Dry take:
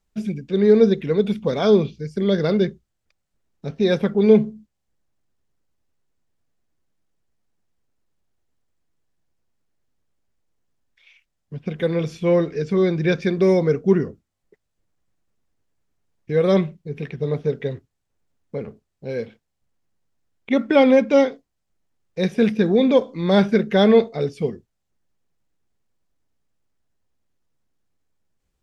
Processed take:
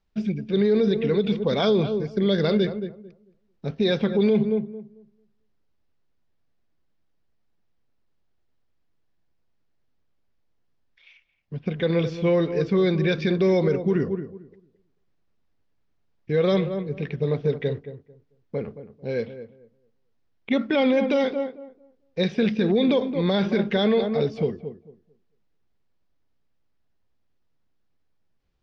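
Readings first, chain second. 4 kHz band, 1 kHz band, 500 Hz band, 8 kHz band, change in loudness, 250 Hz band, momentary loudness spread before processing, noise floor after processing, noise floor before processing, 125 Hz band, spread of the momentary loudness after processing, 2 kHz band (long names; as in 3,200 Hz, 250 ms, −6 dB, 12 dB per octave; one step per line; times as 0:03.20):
+0.5 dB, −4.5 dB, −4.0 dB, can't be measured, −4.0 dB, −3.0 dB, 17 LU, −68 dBFS, −77 dBFS, −1.5 dB, 14 LU, −2.5 dB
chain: low-pass filter 5,200 Hz 24 dB per octave
dynamic equaliser 3,800 Hz, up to +6 dB, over −41 dBFS, Q 1
on a send: feedback echo with a low-pass in the loop 222 ms, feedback 21%, low-pass 1,100 Hz, level −11.5 dB
on the sum: brickwall limiter −13 dBFS, peak gain reduction 10 dB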